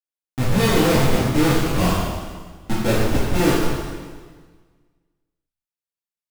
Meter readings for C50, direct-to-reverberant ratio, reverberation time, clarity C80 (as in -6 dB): -1.5 dB, -9.5 dB, 1.5 s, 1.0 dB